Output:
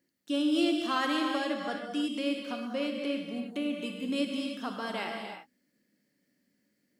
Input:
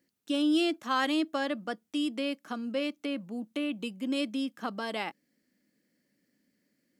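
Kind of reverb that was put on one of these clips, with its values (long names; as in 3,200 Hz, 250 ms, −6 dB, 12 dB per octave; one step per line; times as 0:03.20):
reverb whose tail is shaped and stops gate 360 ms flat, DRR 1 dB
level −2.5 dB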